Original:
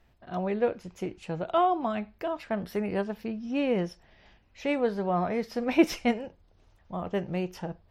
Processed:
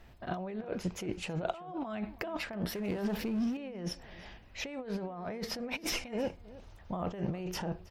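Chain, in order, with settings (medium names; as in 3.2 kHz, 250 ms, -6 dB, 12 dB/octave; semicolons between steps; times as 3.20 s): compressor with a negative ratio -38 dBFS, ratio -1; echo from a far wall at 55 m, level -18 dB; 2.75–3.57 s: power-law waveshaper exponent 0.7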